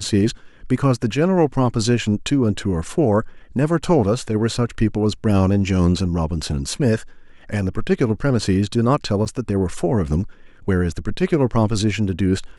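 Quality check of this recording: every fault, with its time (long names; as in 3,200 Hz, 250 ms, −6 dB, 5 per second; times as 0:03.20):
0:09.25–0:09.26: drop-out 7.4 ms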